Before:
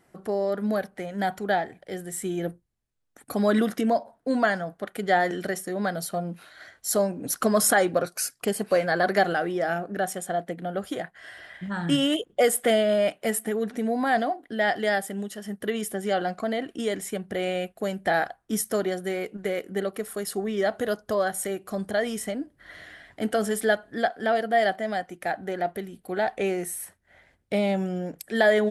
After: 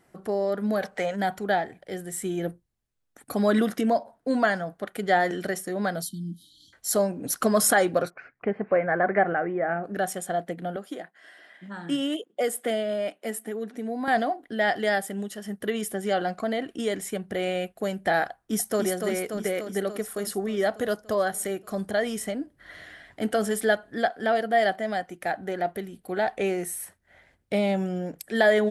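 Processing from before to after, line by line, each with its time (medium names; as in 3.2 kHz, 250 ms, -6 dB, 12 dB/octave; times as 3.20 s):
0.82–1.15 s: time-frequency box 430–8500 Hz +9 dB
6.02–6.73 s: brick-wall FIR band-stop 340–3000 Hz
8.10–9.84 s: Chebyshev low-pass 2.2 kHz, order 4
10.76–14.08 s: ladder high-pass 190 Hz, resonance 30%
18.30–18.84 s: echo throw 290 ms, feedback 70%, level -5 dB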